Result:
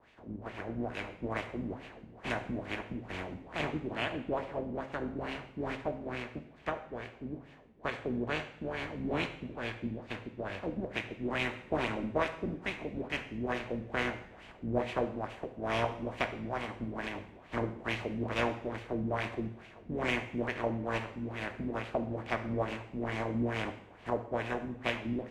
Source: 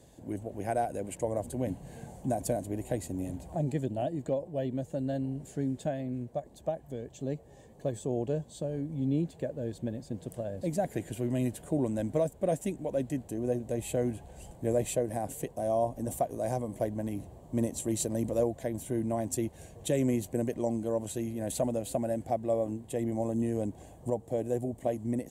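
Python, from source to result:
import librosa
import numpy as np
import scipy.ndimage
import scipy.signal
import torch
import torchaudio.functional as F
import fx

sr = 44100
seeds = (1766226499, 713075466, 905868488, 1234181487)

y = fx.spec_flatten(x, sr, power=0.31)
y = fx.filter_lfo_lowpass(y, sr, shape='sine', hz=2.3, low_hz=210.0, high_hz=2600.0, q=2.5)
y = fx.rev_double_slope(y, sr, seeds[0], early_s=0.66, late_s=1.8, knee_db=-18, drr_db=6.5)
y = F.gain(torch.from_numpy(y), -4.0).numpy()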